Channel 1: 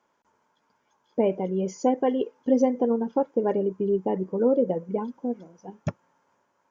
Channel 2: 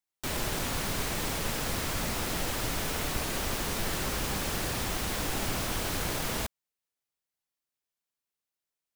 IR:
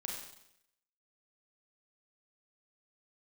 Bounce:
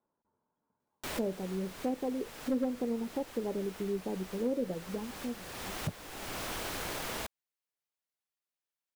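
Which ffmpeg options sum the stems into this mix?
-filter_complex "[0:a]lowpass=1.2k,lowshelf=f=330:g=10,asoftclip=type=hard:threshold=-9dB,volume=-15dB,asplit=2[a][b];[1:a]bass=f=250:g=-8,treble=f=4k:g=-3,adelay=800,volume=-3.5dB[c];[b]apad=whole_len=430400[d];[c][d]sidechaincompress=threshold=-45dB:ratio=8:attack=43:release=532[e];[a][e]amix=inputs=2:normalize=0"

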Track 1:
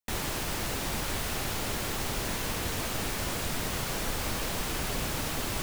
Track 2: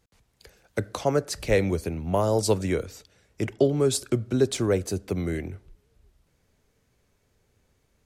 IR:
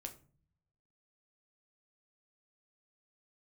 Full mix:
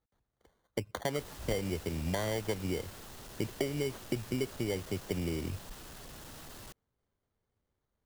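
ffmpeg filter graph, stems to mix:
-filter_complex "[0:a]asoftclip=type=tanh:threshold=-35dB,equalizer=f=2.3k:w=4.4:g=-5.5,adelay=1100,volume=-10.5dB[a];[1:a]afwtdn=0.0355,acompressor=threshold=-32dB:ratio=6,acrusher=samples=17:mix=1:aa=0.000001,volume=1dB[b];[a][b]amix=inputs=2:normalize=0"

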